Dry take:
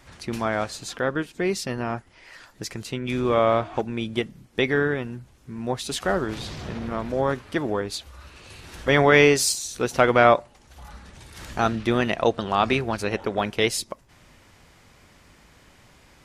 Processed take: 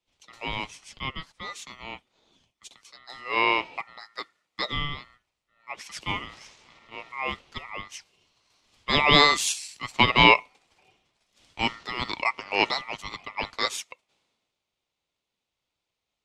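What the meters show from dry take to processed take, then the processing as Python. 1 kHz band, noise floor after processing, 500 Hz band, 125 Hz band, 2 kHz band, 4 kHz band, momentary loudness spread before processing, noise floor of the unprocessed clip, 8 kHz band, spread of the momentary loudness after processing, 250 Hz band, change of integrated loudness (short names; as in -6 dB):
-1.5 dB, -84 dBFS, -11.5 dB, -7.5 dB, 0.0 dB, +5.0 dB, 17 LU, -55 dBFS, -5.0 dB, 23 LU, -8.5 dB, -0.5 dB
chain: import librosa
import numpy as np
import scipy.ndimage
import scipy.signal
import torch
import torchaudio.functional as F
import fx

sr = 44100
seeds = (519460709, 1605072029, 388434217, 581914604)

y = fx.bandpass_edges(x, sr, low_hz=540.0, high_hz=6400.0)
y = y * np.sin(2.0 * np.pi * 1600.0 * np.arange(len(y)) / sr)
y = fx.band_widen(y, sr, depth_pct=70)
y = y * 10.0 ** (-2.0 / 20.0)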